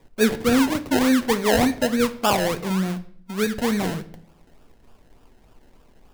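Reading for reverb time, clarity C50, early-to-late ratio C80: 0.60 s, 15.5 dB, 19.5 dB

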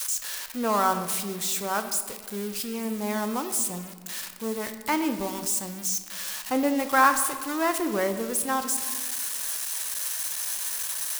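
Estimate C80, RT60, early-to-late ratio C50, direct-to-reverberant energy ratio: 11.5 dB, 1.6 s, 10.0 dB, 8.0 dB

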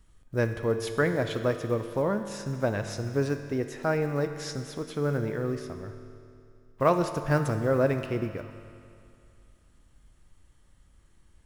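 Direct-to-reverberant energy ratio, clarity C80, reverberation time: 6.5 dB, 9.0 dB, 2.5 s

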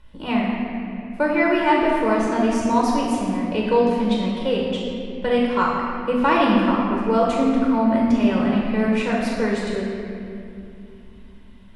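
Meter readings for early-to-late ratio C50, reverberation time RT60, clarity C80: 0.0 dB, 2.6 s, 1.5 dB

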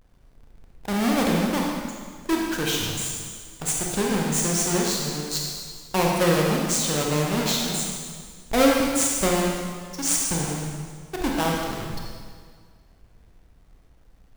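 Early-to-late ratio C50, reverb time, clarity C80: 0.0 dB, 1.8 s, 2.0 dB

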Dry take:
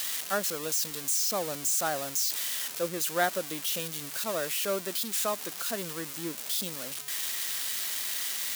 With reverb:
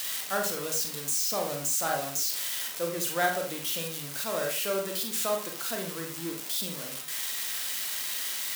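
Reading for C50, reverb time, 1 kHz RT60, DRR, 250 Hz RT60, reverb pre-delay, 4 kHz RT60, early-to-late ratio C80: 6.5 dB, 0.45 s, 0.45 s, 1.5 dB, 0.50 s, 32 ms, 0.30 s, 11.0 dB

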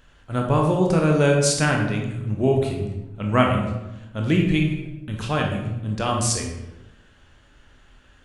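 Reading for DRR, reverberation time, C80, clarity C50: 0.5 dB, 0.95 s, 6.5 dB, 4.0 dB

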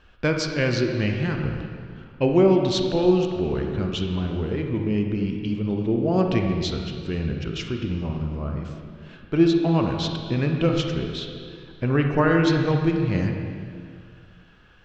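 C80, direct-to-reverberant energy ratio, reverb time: 4.5 dB, 2.5 dB, 2.2 s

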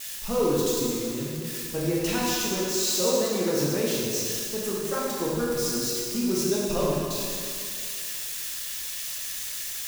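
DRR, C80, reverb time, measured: -6.0 dB, -1.0 dB, 2.3 s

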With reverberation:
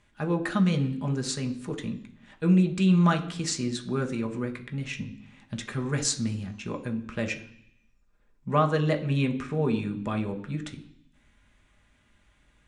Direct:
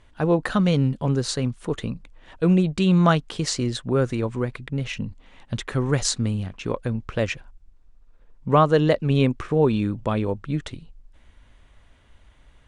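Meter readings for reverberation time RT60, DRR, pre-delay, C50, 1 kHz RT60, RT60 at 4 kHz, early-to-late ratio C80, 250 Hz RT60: 0.65 s, 4.0 dB, 3 ms, 13.0 dB, 0.70 s, 0.90 s, 16.5 dB, 0.95 s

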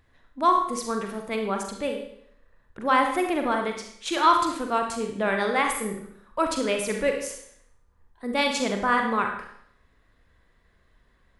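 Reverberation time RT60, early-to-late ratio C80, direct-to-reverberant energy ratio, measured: 0.65 s, 9.0 dB, 3.0 dB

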